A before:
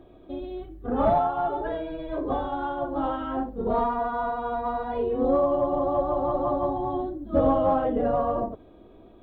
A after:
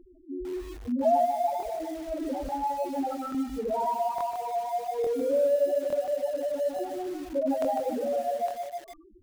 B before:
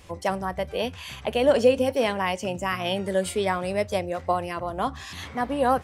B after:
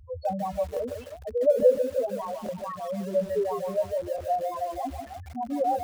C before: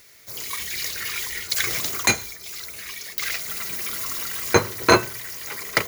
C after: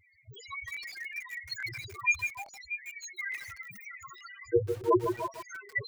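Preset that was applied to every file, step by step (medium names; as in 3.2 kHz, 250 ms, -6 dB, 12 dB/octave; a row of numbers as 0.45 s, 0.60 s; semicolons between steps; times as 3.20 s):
median filter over 3 samples; peaking EQ 71 Hz +2 dB 1.8 oct; repeats whose band climbs or falls 318 ms, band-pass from 780 Hz, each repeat 1.4 oct, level -8 dB; gain riding within 4 dB 2 s; loudest bins only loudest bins 2; crackling interface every 0.86 s, samples 1024, repeat, from 0.72 s; bit-crushed delay 151 ms, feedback 35%, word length 7-bit, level -6.5 dB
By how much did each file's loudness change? -3.0 LU, -2.5 LU, -9.0 LU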